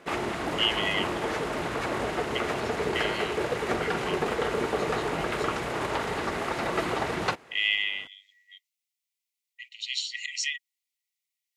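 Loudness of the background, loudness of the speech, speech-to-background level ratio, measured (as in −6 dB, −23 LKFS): −29.5 LKFS, −30.5 LKFS, −1.0 dB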